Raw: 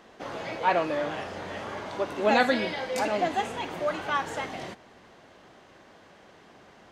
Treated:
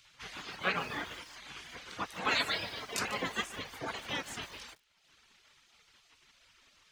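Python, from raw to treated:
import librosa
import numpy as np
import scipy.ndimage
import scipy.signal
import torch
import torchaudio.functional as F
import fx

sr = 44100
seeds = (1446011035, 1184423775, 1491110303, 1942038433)

y = fx.dereverb_blind(x, sr, rt60_s=1.0)
y = fx.spec_gate(y, sr, threshold_db=-15, keep='weak')
y = fx.echo_crushed(y, sr, ms=147, feedback_pct=35, bits=8, wet_db=-13.5)
y = y * 10.0 ** (2.5 / 20.0)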